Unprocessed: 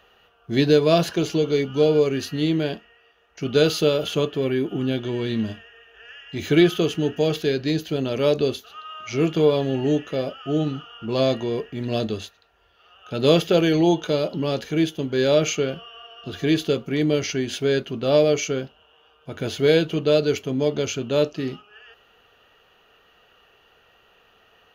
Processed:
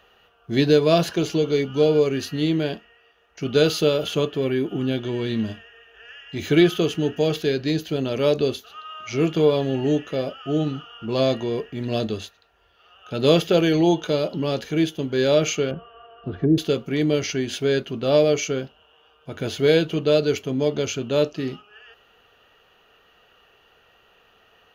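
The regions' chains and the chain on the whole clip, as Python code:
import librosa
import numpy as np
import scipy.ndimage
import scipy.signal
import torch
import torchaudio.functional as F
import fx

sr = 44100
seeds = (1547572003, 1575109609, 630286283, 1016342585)

y = fx.chain(x, sr, fx.lowpass(hz=1400.0, slope=12),
    fx.env_lowpass_down(base_hz=410.0, full_db=-19.5),
    fx.low_shelf(hz=340.0, db=5.5), at=(15.71, 16.58))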